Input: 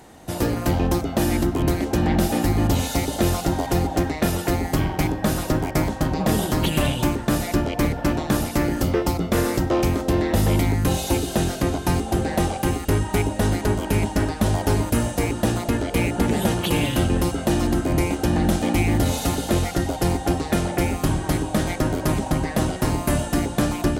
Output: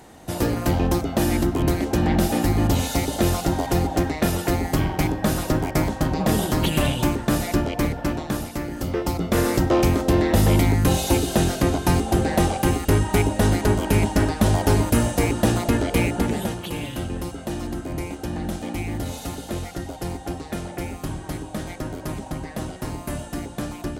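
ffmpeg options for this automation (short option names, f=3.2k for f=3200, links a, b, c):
-af "volume=10.5dB,afade=t=out:st=7.53:d=1.15:silence=0.375837,afade=t=in:st=8.68:d=0.93:silence=0.298538,afade=t=out:st=15.88:d=0.71:silence=0.298538"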